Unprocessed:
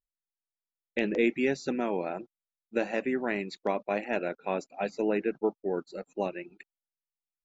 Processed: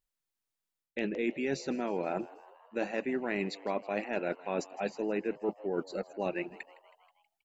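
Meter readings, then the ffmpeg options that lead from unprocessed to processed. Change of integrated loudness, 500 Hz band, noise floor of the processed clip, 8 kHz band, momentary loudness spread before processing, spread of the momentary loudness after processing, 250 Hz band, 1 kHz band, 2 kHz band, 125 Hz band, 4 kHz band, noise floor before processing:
-3.5 dB, -3.5 dB, under -85 dBFS, n/a, 9 LU, 7 LU, -3.5 dB, -3.0 dB, -3.5 dB, -1.5 dB, -1.5 dB, under -85 dBFS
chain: -filter_complex "[0:a]areverse,acompressor=threshold=-35dB:ratio=6,areverse,asplit=6[a][b][c][d][e][f];[b]adelay=160,afreqshift=96,volume=-20dB[g];[c]adelay=320,afreqshift=192,volume=-24.2dB[h];[d]adelay=480,afreqshift=288,volume=-28.3dB[i];[e]adelay=640,afreqshift=384,volume=-32.5dB[j];[f]adelay=800,afreqshift=480,volume=-36.6dB[k];[a][g][h][i][j][k]amix=inputs=6:normalize=0,volume=5.5dB"

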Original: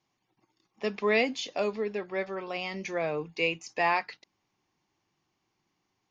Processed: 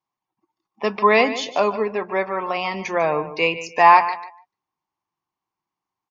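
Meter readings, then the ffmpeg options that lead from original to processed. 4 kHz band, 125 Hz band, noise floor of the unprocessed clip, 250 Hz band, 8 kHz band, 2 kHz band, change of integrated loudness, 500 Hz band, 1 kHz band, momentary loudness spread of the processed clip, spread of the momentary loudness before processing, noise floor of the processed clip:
+7.0 dB, +7.0 dB, -79 dBFS, +7.0 dB, n/a, +8.5 dB, +11.0 dB, +9.0 dB, +16.5 dB, 12 LU, 9 LU, under -85 dBFS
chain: -filter_complex "[0:a]asplit=2[a][b];[b]aecho=0:1:148|296|444:0.224|0.0582|0.0151[c];[a][c]amix=inputs=2:normalize=0,afftdn=nr=20:nf=-54,equalizer=f=1k:w=1.7:g=12.5,volume=6.5dB"

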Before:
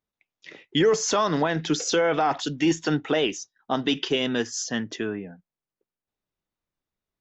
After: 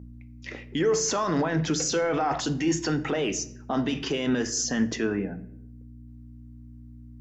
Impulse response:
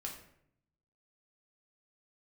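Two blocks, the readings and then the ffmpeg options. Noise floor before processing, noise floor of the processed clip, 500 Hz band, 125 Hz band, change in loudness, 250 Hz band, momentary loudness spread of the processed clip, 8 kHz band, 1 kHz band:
under -85 dBFS, -46 dBFS, -3.0 dB, +1.5 dB, -2.0 dB, -0.5 dB, 10 LU, n/a, -3.0 dB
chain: -filter_complex "[0:a]aeval=exprs='val(0)+0.00631*(sin(2*PI*60*n/s)+sin(2*PI*2*60*n/s)/2+sin(2*PI*3*60*n/s)/3+sin(2*PI*4*60*n/s)/4+sin(2*PI*5*60*n/s)/5)':c=same,highpass=f=130:p=1,acontrast=42,alimiter=limit=-18.5dB:level=0:latency=1:release=36,equalizer=f=3.5k:w=2.5:g=-7.5,asplit=2[a][b];[1:a]atrim=start_sample=2205,asetrate=41895,aresample=44100,lowshelf=f=200:g=11[c];[b][c]afir=irnorm=-1:irlink=0,volume=-5.5dB[d];[a][d]amix=inputs=2:normalize=0,volume=-2dB"

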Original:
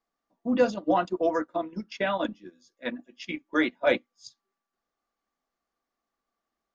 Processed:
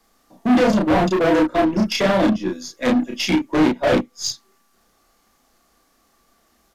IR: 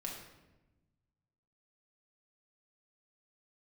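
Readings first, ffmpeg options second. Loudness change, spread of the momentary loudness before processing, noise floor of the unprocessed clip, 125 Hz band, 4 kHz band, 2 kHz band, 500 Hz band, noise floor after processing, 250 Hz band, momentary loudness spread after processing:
+9.5 dB, 13 LU, under -85 dBFS, +18.0 dB, +13.5 dB, +6.5 dB, +8.0 dB, -62 dBFS, +13.0 dB, 10 LU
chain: -filter_complex "[0:a]apsyclip=22dB,lowshelf=f=220:g=8,acrossover=split=190|690[a][b][c];[c]acompressor=threshold=-20dB:ratio=6[d];[a][b][d]amix=inputs=3:normalize=0,highshelf=f=4.6k:g=10,asoftclip=type=tanh:threshold=-13dB,aeval=exprs='0.224*(cos(1*acos(clip(val(0)/0.224,-1,1)))-cos(1*PI/2))+0.00708*(cos(8*acos(clip(val(0)/0.224,-1,1)))-cos(8*PI/2))':c=same,asplit=2[e][f];[f]adelay=32,volume=-2dB[g];[e][g]amix=inputs=2:normalize=0,aresample=32000,aresample=44100,volume=-3dB"

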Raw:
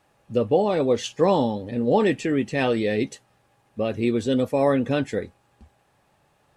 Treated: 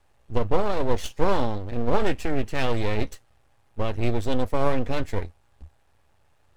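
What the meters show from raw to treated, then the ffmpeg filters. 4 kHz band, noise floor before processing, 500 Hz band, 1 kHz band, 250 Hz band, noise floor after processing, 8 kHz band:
-2.5 dB, -65 dBFS, -5.0 dB, -1.5 dB, -6.5 dB, -62 dBFS, -3.5 dB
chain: -af "aeval=exprs='max(val(0),0)':c=same,lowshelf=f=110:t=q:w=1.5:g=10"

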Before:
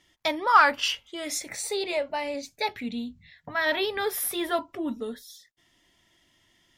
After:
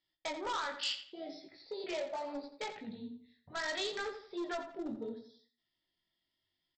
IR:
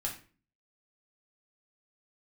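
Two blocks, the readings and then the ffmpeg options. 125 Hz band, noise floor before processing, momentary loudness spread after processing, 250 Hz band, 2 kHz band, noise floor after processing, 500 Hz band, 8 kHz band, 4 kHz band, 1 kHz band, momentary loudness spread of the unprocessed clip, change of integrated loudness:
-8.0 dB, -67 dBFS, 12 LU, -9.5 dB, -14.5 dB, under -85 dBFS, -10.5 dB, -17.0 dB, -9.0 dB, -16.0 dB, 14 LU, -13.0 dB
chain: -filter_complex "[0:a]afwtdn=0.0224,bandreject=f=60:t=h:w=6,bandreject=f=120:t=h:w=6,bandreject=f=180:t=h:w=6,bandreject=f=240:t=h:w=6,bandreject=f=300:t=h:w=6,acompressor=threshold=-26dB:ratio=8,aresample=11025,aresample=44100,flanger=delay=18:depth=5.2:speed=0.73,aresample=16000,asoftclip=type=hard:threshold=-30dB,aresample=44100,aexciter=amount=4.1:drive=2.2:freq=3.7k,asplit=2[a][b];[b]adelay=86,lowpass=f=3.9k:p=1,volume=-9dB,asplit=2[c][d];[d]adelay=86,lowpass=f=3.9k:p=1,volume=0.36,asplit=2[e][f];[f]adelay=86,lowpass=f=3.9k:p=1,volume=0.36,asplit=2[g][h];[h]adelay=86,lowpass=f=3.9k:p=1,volume=0.36[i];[a][c][e][g][i]amix=inputs=5:normalize=0,asplit=2[j][k];[1:a]atrim=start_sample=2205[l];[k][l]afir=irnorm=-1:irlink=0,volume=-14dB[m];[j][m]amix=inputs=2:normalize=0,volume=-5dB"

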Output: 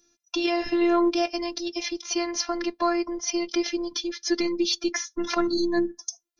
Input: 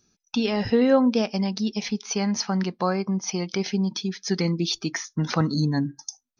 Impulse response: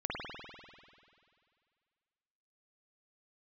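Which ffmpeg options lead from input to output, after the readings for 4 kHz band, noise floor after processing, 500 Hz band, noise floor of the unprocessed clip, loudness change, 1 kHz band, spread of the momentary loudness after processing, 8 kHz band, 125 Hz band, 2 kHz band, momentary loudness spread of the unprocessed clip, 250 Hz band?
+1.0 dB, -73 dBFS, -0.5 dB, -75 dBFS, -1.5 dB, +1.5 dB, 8 LU, n/a, under -25 dB, +1.0 dB, 9 LU, -2.0 dB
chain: -af "highpass=83,acontrast=26,afftfilt=real='hypot(re,im)*cos(PI*b)':imag='0':win_size=512:overlap=0.75"

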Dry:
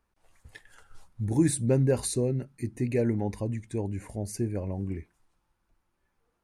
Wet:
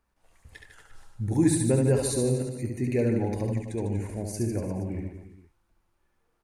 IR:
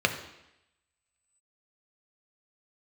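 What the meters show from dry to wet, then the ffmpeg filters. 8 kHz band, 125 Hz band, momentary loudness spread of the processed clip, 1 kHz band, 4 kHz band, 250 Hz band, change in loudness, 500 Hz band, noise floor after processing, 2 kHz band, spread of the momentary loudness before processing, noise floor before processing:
+2.0 dB, +1.5 dB, 11 LU, +2.0 dB, +2.0 dB, +2.5 dB, +2.0 dB, +2.0 dB, -73 dBFS, +2.0 dB, 12 LU, -77 dBFS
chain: -af "aecho=1:1:70|150.5|243.1|349.5|472:0.631|0.398|0.251|0.158|0.1"

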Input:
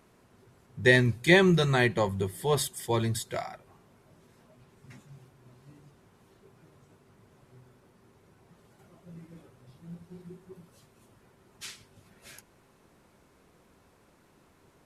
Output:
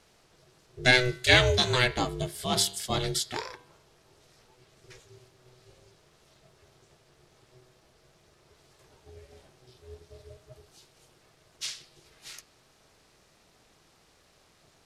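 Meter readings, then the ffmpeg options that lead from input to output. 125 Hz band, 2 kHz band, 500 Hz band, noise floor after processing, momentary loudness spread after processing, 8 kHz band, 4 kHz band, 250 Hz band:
-3.5 dB, +1.5 dB, -3.0 dB, -64 dBFS, 17 LU, +5.0 dB, +8.0 dB, -6.5 dB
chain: -af "equalizer=f=4.7k:t=o:w=1.9:g=13,bandreject=f=147.3:t=h:w=4,bandreject=f=294.6:t=h:w=4,bandreject=f=441.9:t=h:w=4,bandreject=f=589.2:t=h:w=4,bandreject=f=736.5:t=h:w=4,bandreject=f=883.8:t=h:w=4,bandreject=f=1.0311k:t=h:w=4,bandreject=f=1.1784k:t=h:w=4,bandreject=f=1.3257k:t=h:w=4,bandreject=f=1.473k:t=h:w=4,bandreject=f=1.6203k:t=h:w=4,bandreject=f=1.7676k:t=h:w=4,bandreject=f=1.9149k:t=h:w=4,bandreject=f=2.0622k:t=h:w=4,bandreject=f=2.2095k:t=h:w=4,bandreject=f=2.3568k:t=h:w=4,bandreject=f=2.5041k:t=h:w=4,bandreject=f=2.6514k:t=h:w=4,bandreject=f=2.7987k:t=h:w=4,bandreject=f=2.946k:t=h:w=4,bandreject=f=3.0933k:t=h:w=4,bandreject=f=3.2406k:t=h:w=4,bandreject=f=3.3879k:t=h:w=4,bandreject=f=3.5352k:t=h:w=4,bandreject=f=3.6825k:t=h:w=4,bandreject=f=3.8298k:t=h:w=4,bandreject=f=3.9771k:t=h:w=4,bandreject=f=4.1244k:t=h:w=4,bandreject=f=4.2717k:t=h:w=4,bandreject=f=4.419k:t=h:w=4,bandreject=f=4.5663k:t=h:w=4,bandreject=f=4.7136k:t=h:w=4,bandreject=f=4.8609k:t=h:w=4,aeval=exprs='val(0)*sin(2*PI*250*n/s)':c=same"

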